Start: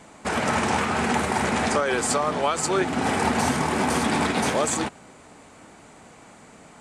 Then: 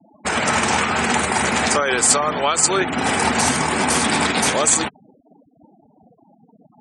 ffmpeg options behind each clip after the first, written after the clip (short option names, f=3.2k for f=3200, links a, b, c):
-af "afftfilt=real='re*gte(hypot(re,im),0.0158)':imag='im*gte(hypot(re,im),0.0158)':win_size=1024:overlap=0.75,highshelf=f=3.7k:g=-9,crystalizer=i=7:c=0,volume=1.5dB"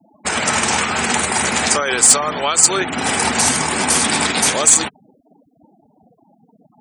-af "highshelf=f=3.5k:g=8,asoftclip=type=hard:threshold=-1dB,volume=-1dB"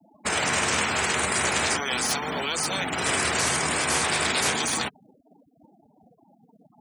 -filter_complex "[0:a]afftfilt=real='re*lt(hypot(re,im),0.398)':imag='im*lt(hypot(re,im),0.398)':win_size=1024:overlap=0.75,acrossover=split=230|1400|3400[a][b][c][d];[d]alimiter=limit=-14dB:level=0:latency=1:release=72[e];[a][b][c][e]amix=inputs=4:normalize=0,acrusher=bits=9:mode=log:mix=0:aa=0.000001,volume=-4.5dB"